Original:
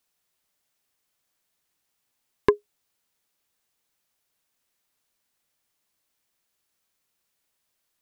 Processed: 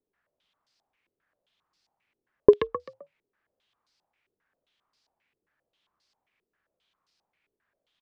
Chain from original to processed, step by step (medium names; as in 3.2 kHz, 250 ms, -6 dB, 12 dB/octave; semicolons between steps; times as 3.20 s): on a send: frequency-shifting echo 130 ms, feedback 39%, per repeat +38 Hz, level -9.5 dB; on the sum: step-sequenced low-pass 7.5 Hz 400–4800 Hz